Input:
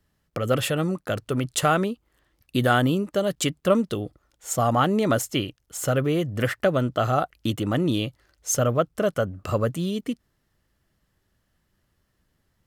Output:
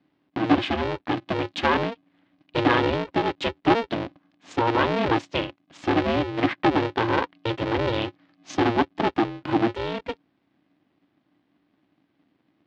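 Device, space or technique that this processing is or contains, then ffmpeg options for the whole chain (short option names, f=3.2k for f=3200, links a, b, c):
ring modulator pedal into a guitar cabinet: -af "aeval=exprs='val(0)*sgn(sin(2*PI*230*n/s))':c=same,highpass=110,equalizer=f=290:t=q:w=4:g=10,equalizer=f=440:t=q:w=4:g=-4,equalizer=f=1.4k:t=q:w=4:g=-3,lowpass=f=3.9k:w=0.5412,lowpass=f=3.9k:w=1.3066"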